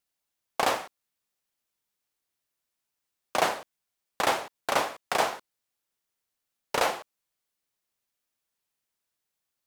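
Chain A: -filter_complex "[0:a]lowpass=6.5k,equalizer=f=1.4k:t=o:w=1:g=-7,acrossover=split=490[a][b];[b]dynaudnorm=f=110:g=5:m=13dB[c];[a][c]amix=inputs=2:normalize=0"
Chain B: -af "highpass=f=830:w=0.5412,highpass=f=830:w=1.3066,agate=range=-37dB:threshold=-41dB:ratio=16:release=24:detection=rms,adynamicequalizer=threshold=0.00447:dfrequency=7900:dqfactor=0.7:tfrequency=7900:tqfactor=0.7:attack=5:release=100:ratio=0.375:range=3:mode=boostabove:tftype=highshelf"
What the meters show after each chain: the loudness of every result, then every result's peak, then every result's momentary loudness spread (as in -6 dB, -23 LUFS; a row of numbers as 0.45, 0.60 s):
-21.0, -30.0 LUFS; -2.0, -12.0 dBFS; 12, 11 LU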